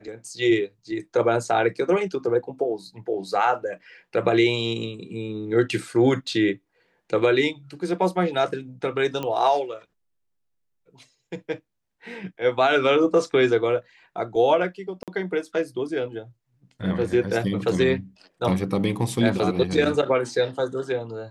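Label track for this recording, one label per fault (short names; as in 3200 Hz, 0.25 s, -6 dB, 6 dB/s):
9.230000	9.230000	pop -16 dBFS
15.030000	15.080000	gap 47 ms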